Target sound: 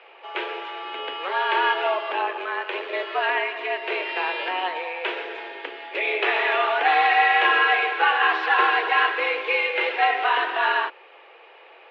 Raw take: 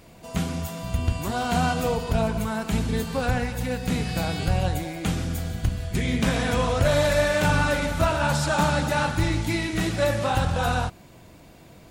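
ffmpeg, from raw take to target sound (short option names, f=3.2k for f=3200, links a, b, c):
-filter_complex "[0:a]crystalizer=i=9.5:c=0,asplit=3[a][b][c];[a]afade=t=out:st=2.14:d=0.02[d];[b]tremolo=f=93:d=0.462,afade=t=in:st=2.14:d=0.02,afade=t=out:st=2.92:d=0.02[e];[c]afade=t=in:st=2.92:d=0.02[f];[d][e][f]amix=inputs=3:normalize=0,highpass=f=240:t=q:w=0.5412,highpass=f=240:t=q:w=1.307,lowpass=f=2.6k:t=q:w=0.5176,lowpass=f=2.6k:t=q:w=0.7071,lowpass=f=2.6k:t=q:w=1.932,afreqshift=180"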